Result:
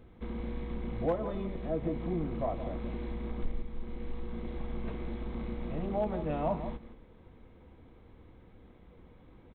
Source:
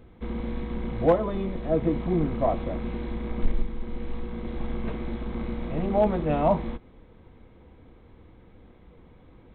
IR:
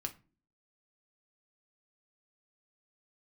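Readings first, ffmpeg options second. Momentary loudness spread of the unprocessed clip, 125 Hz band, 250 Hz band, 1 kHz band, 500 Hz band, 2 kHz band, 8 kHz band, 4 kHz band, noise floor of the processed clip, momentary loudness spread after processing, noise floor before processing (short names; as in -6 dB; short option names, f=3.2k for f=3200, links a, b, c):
13 LU, -7.0 dB, -8.0 dB, -9.0 dB, -9.0 dB, -8.0 dB, n/a, -7.5 dB, -56 dBFS, 10 LU, -53 dBFS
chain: -filter_complex "[0:a]acompressor=threshold=-34dB:ratio=1.5,asplit=2[a][b];[b]adelay=169.1,volume=-11dB,highshelf=f=4k:g=-3.8[c];[a][c]amix=inputs=2:normalize=0,volume=-4dB"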